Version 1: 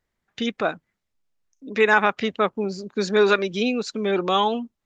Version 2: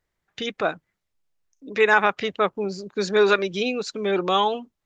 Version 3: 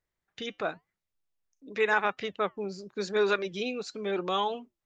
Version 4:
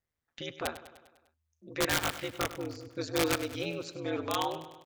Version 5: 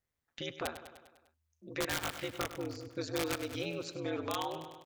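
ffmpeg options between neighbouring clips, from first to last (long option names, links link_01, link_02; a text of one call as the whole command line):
ffmpeg -i in.wav -af "equalizer=frequency=230:width=7.4:gain=-11" out.wav
ffmpeg -i in.wav -af "flanger=delay=1.9:depth=2.9:regen=-89:speed=0.92:shape=sinusoidal,volume=-3.5dB" out.wav
ffmpeg -i in.wav -af "aeval=exprs='val(0)*sin(2*PI*79*n/s)':channel_layout=same,aeval=exprs='(mod(9.44*val(0)+1,2)-1)/9.44':channel_layout=same,aecho=1:1:100|200|300|400|500|600:0.2|0.116|0.0671|0.0389|0.0226|0.0131" out.wav
ffmpeg -i in.wav -af "acompressor=threshold=-33dB:ratio=3" out.wav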